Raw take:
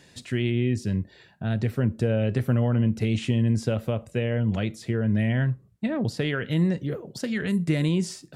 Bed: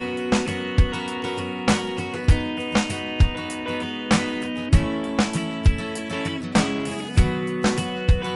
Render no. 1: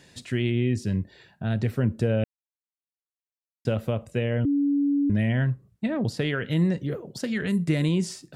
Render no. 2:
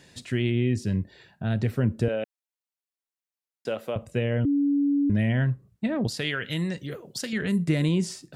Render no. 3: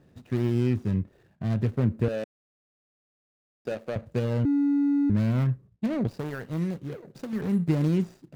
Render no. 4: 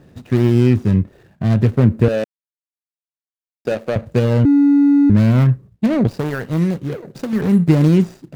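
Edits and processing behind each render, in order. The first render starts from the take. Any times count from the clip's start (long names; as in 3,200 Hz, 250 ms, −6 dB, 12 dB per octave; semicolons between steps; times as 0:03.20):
0:02.24–0:03.65: silence; 0:04.45–0:05.10: beep over 284 Hz −19.5 dBFS
0:02.08–0:03.96: high-pass filter 380 Hz; 0:06.07–0:07.33: tilt shelving filter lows −6.5 dB, about 1,400 Hz
running median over 41 samples
level +11.5 dB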